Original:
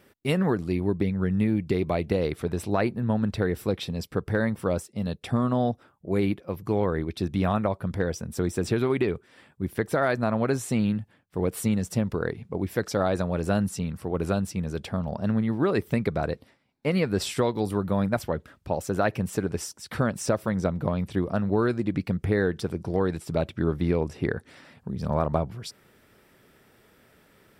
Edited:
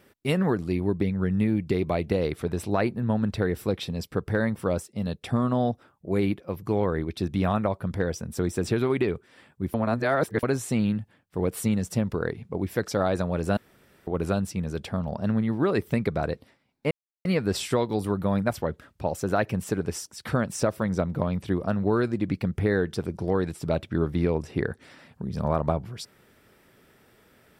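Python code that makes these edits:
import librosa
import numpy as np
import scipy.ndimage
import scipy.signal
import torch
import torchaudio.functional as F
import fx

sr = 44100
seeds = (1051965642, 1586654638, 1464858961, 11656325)

y = fx.edit(x, sr, fx.reverse_span(start_s=9.74, length_s=0.69),
    fx.room_tone_fill(start_s=13.57, length_s=0.5),
    fx.insert_silence(at_s=16.91, length_s=0.34), tone=tone)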